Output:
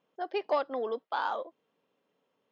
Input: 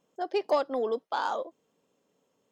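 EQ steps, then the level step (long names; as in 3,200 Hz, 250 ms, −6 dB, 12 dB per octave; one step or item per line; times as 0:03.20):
high-frequency loss of the air 280 metres
tilt shelving filter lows −5 dB
low-shelf EQ 66 Hz −9.5 dB
0.0 dB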